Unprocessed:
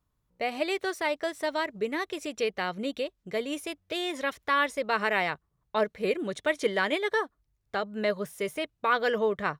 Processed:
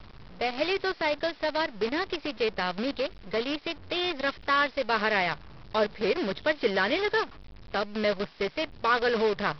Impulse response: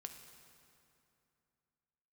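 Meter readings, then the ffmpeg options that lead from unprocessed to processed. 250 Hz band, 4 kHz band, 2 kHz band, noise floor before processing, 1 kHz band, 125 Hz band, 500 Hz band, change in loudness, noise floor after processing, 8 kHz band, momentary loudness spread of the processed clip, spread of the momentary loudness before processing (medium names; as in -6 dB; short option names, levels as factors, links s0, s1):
+1.5 dB, +4.0 dB, +1.0 dB, -77 dBFS, +1.0 dB, +3.0 dB, +1.0 dB, +1.5 dB, -49 dBFS, no reading, 7 LU, 8 LU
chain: -af "aeval=exprs='val(0)+0.5*0.0141*sgn(val(0))':c=same,aresample=11025,acrusher=bits=6:dc=4:mix=0:aa=0.000001,aresample=44100"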